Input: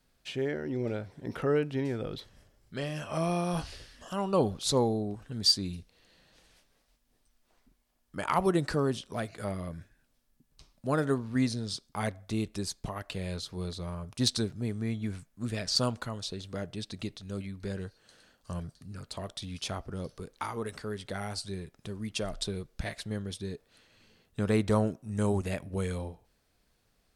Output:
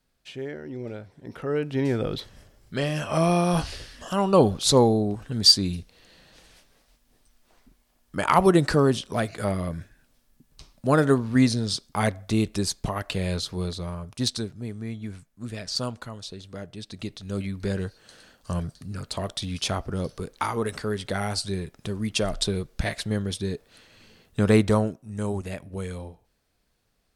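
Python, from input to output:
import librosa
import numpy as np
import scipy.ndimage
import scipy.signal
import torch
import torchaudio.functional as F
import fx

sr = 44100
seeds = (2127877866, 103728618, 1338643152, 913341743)

y = fx.gain(x, sr, db=fx.line((1.42, -2.5), (1.89, 8.5), (13.43, 8.5), (14.53, -1.0), (16.77, -1.0), (17.46, 8.5), (24.57, 8.5), (25.0, -0.5)))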